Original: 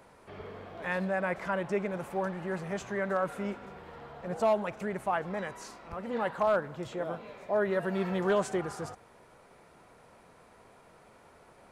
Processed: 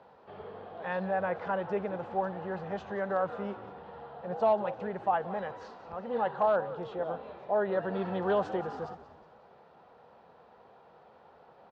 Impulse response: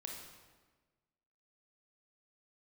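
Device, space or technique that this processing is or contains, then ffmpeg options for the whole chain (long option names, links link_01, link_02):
frequency-shifting delay pedal into a guitar cabinet: -filter_complex "[0:a]asplit=6[link_01][link_02][link_03][link_04][link_05][link_06];[link_02]adelay=181,afreqshift=-91,volume=-14.5dB[link_07];[link_03]adelay=362,afreqshift=-182,volume=-20.7dB[link_08];[link_04]adelay=543,afreqshift=-273,volume=-26.9dB[link_09];[link_05]adelay=724,afreqshift=-364,volume=-33.1dB[link_10];[link_06]adelay=905,afreqshift=-455,volume=-39.3dB[link_11];[link_01][link_07][link_08][link_09][link_10][link_11]amix=inputs=6:normalize=0,highpass=83,equalizer=frequency=110:width_type=q:width=4:gain=-6,equalizer=frequency=300:width_type=q:width=4:gain=-5,equalizer=frequency=490:width_type=q:width=4:gain=5,equalizer=frequency=800:width_type=q:width=4:gain=8,equalizer=frequency=2200:width_type=q:width=4:gain=-9,lowpass=frequency=4100:width=0.5412,lowpass=frequency=4100:width=1.3066,volume=-2.5dB"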